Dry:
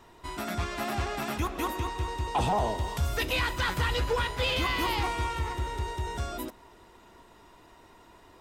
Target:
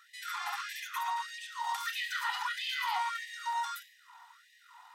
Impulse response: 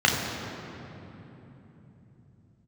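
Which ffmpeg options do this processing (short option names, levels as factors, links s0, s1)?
-filter_complex "[0:a]lowshelf=f=600:t=q:w=1.5:g=-10.5,atempo=1.7,alimiter=level_in=1.26:limit=0.0631:level=0:latency=1:release=88,volume=0.794,asplit=2[s0][s1];[1:a]atrim=start_sample=2205,afade=t=out:st=0.21:d=0.01,atrim=end_sample=9702[s2];[s1][s2]afir=irnorm=-1:irlink=0,volume=0.1[s3];[s0][s3]amix=inputs=2:normalize=0,afftfilt=real='re*gte(b*sr/1024,690*pow(1700/690,0.5+0.5*sin(2*PI*1.6*pts/sr)))':imag='im*gte(b*sr/1024,690*pow(1700/690,0.5+0.5*sin(2*PI*1.6*pts/sr)))':win_size=1024:overlap=0.75"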